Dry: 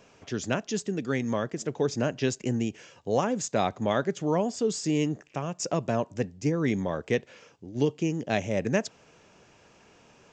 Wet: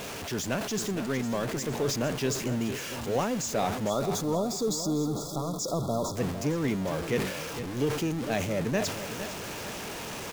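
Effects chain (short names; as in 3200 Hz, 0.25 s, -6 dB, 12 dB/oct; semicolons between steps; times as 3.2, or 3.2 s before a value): zero-crossing step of -27.5 dBFS; spectral delete 3.89–6.16, 1400–3300 Hz; on a send: feedback echo 0.457 s, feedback 40%, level -11 dB; on the sum: sustainer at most 63 dB/s; gain -5 dB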